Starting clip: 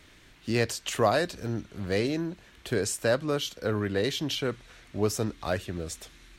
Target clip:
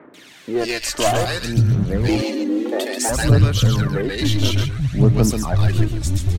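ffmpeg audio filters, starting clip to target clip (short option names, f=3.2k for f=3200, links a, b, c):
-filter_complex "[0:a]asubboost=boost=9.5:cutoff=140,asplit=2[a][b];[b]acompressor=threshold=-34dB:ratio=6,volume=2dB[c];[a][c]amix=inputs=2:normalize=0,acrossover=split=190|1400[d][e][f];[f]adelay=140[g];[d]adelay=580[h];[h][e][g]amix=inputs=3:normalize=0,aeval=exprs='clip(val(0),-1,0.0841)':c=same,aphaser=in_gain=1:out_gain=1:delay=3.5:decay=0.56:speed=0.58:type=sinusoidal,asettb=1/sr,asplit=3[i][j][k];[i]atrim=end=2.084[l];[j]atrim=start=2.08:end=3.09,asetpts=PTS-STARTPTS,afade=t=in:d=0.004:c=qsin,afade=t=out:st=1.006:d=0.004:c=qsin,afreqshift=210[m];[k]atrim=start=3.086[n];[l][m]acrossfade=d=0.004:c1=hsin:c2=qsin[o];[o][n]acrossfade=d=0.004:c1=qsin:c2=hsin,asplit=2[p][q];[q]aecho=0:1:135:0.473[r];[p][r]amix=inputs=2:normalize=0,volume=4.5dB"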